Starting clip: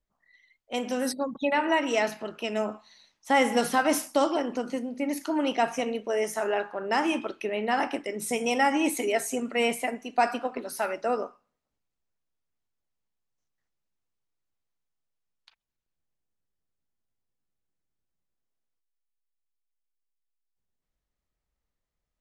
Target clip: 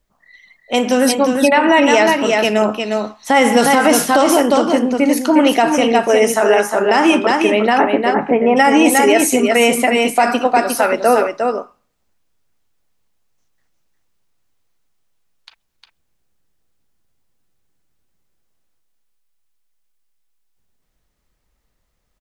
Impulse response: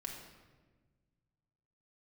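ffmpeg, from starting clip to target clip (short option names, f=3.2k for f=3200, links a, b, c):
-filter_complex "[0:a]asplit=3[a][b][c];[a]afade=t=out:st=7.77:d=0.02[d];[b]lowpass=f=1.8k:w=0.5412,lowpass=f=1.8k:w=1.3066,afade=t=in:st=7.77:d=0.02,afade=t=out:st=8.56:d=0.02[e];[c]afade=t=in:st=8.56:d=0.02[f];[d][e][f]amix=inputs=3:normalize=0,aecho=1:1:356:0.531,alimiter=level_in=16dB:limit=-1dB:release=50:level=0:latency=1,volume=-1dB"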